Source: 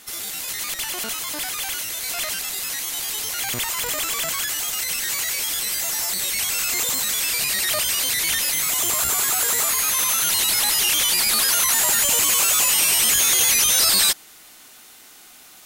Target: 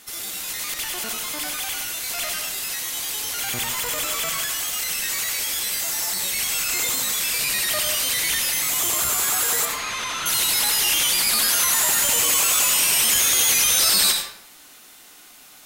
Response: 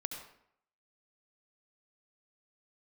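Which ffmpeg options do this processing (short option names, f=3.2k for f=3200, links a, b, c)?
-filter_complex "[0:a]asettb=1/sr,asplit=3[a][b][c];[a]atrim=end=9.654[d];[b]atrim=start=9.65:end=10.26,asetpts=PTS-STARTPTS,afade=t=in:d=0.004:c=qsin,afade=t=out:st=0.606:d=0.004:c=qsin,lowpass=4.1k[e];[c]atrim=start=10.256[f];[d][e]acrossfade=d=0.004:c1=hsin:c2=qsin[g];[g][f]acrossfade=d=0.004:c1=qsin:c2=hsin[h];[1:a]atrim=start_sample=2205[i];[h][i]afir=irnorm=-1:irlink=0"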